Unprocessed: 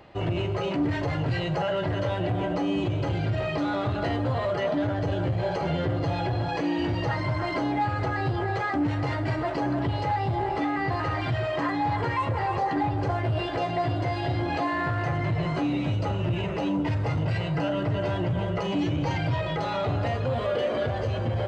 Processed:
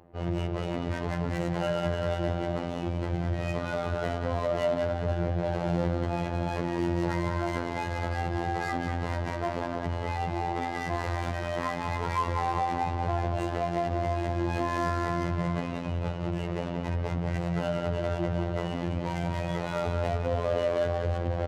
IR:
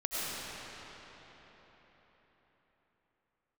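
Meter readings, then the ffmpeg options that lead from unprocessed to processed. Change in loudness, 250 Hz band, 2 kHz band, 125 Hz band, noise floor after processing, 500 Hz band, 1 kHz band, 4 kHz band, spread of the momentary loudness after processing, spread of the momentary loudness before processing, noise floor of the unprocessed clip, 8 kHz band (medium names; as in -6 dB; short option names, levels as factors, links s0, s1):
-3.0 dB, -4.0 dB, -4.0 dB, -4.0 dB, -34 dBFS, -1.5 dB, -3.0 dB, -5.5 dB, 4 LU, 1 LU, -29 dBFS, no reading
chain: -af "aecho=1:1:189|378|567|756|945|1134:0.501|0.256|0.13|0.0665|0.0339|0.0173,adynamicsmooth=sensitivity=5.5:basefreq=640,afftfilt=real='hypot(re,im)*cos(PI*b)':imag='0':win_size=2048:overlap=0.75"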